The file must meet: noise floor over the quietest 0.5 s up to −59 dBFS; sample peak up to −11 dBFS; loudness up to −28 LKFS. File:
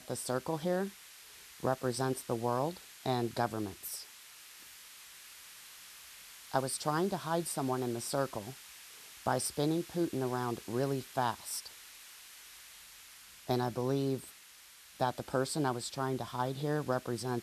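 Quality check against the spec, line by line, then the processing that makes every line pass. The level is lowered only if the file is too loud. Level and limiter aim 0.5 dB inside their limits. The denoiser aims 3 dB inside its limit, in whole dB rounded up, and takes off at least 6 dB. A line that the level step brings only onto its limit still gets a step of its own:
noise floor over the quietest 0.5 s −56 dBFS: out of spec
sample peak −14.5 dBFS: in spec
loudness −35.0 LKFS: in spec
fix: broadband denoise 6 dB, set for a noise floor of −56 dBFS

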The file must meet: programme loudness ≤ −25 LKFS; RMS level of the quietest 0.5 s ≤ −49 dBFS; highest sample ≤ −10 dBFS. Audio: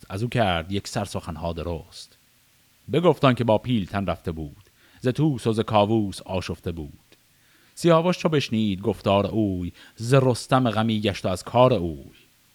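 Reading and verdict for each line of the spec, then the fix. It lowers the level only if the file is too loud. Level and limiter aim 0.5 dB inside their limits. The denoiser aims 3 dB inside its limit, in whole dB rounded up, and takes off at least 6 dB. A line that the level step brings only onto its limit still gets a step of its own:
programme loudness −23.5 LKFS: out of spec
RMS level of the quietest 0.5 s −60 dBFS: in spec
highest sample −4.0 dBFS: out of spec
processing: level −2 dB
brickwall limiter −10.5 dBFS

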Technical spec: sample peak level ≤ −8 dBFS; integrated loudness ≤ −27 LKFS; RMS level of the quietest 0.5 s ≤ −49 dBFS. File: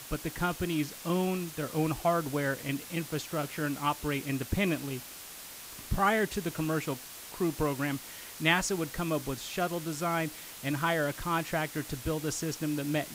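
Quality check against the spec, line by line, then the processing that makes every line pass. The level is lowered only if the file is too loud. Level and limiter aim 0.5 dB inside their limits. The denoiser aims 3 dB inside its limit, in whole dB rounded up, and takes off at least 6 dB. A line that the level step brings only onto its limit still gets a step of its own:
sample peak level −11.5 dBFS: in spec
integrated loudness −31.5 LKFS: in spec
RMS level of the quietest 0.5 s −46 dBFS: out of spec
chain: broadband denoise 6 dB, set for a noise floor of −46 dBFS

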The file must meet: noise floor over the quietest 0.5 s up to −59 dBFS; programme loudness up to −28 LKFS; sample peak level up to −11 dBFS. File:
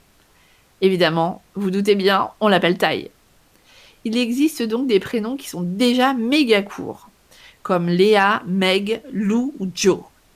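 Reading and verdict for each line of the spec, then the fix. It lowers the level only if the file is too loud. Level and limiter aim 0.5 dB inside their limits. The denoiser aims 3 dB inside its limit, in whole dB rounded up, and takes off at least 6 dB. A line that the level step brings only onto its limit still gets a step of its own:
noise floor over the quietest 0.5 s −55 dBFS: out of spec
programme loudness −19.0 LKFS: out of spec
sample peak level −4.0 dBFS: out of spec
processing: level −9.5 dB

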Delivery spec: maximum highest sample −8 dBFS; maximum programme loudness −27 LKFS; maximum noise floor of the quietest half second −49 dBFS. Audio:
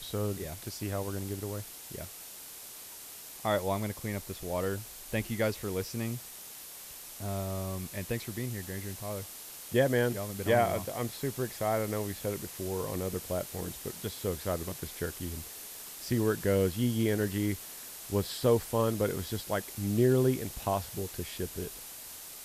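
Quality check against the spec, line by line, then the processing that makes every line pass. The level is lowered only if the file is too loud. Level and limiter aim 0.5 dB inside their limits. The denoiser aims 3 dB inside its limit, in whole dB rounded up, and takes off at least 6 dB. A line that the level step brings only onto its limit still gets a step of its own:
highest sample −13.5 dBFS: in spec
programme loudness −33.0 LKFS: in spec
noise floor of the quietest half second −47 dBFS: out of spec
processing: broadband denoise 6 dB, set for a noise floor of −47 dBFS

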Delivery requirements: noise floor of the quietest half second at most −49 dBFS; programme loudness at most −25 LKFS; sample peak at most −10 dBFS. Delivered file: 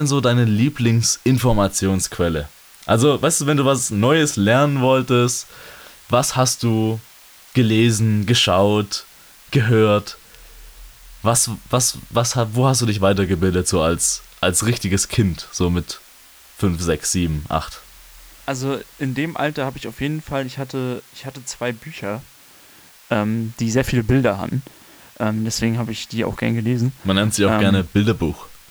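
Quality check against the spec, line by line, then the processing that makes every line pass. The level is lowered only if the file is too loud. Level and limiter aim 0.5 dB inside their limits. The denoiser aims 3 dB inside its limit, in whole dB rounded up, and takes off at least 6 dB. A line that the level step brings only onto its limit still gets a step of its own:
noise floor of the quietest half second −47 dBFS: out of spec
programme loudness −19.0 LKFS: out of spec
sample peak −5.0 dBFS: out of spec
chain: level −6.5 dB

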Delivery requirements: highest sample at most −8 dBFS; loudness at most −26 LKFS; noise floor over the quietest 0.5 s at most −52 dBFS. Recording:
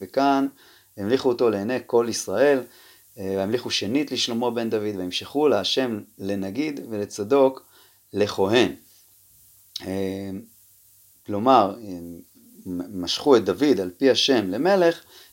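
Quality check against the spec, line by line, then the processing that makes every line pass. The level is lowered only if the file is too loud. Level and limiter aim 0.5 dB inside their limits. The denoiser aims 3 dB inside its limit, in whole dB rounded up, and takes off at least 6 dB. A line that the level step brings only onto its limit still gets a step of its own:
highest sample −3.0 dBFS: out of spec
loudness −22.5 LKFS: out of spec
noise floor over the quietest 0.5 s −55 dBFS: in spec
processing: level −4 dB
brickwall limiter −8.5 dBFS

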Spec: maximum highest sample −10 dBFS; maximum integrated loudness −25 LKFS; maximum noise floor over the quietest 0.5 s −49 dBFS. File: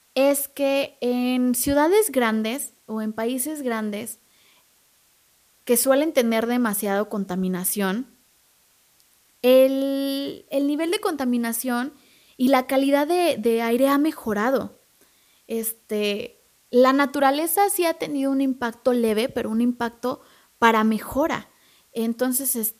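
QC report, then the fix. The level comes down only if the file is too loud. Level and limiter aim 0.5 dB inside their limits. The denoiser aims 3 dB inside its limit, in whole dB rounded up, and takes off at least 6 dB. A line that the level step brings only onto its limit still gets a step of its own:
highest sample −2.5 dBFS: out of spec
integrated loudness −22.0 LKFS: out of spec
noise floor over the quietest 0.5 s −61 dBFS: in spec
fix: level −3.5 dB
brickwall limiter −10.5 dBFS

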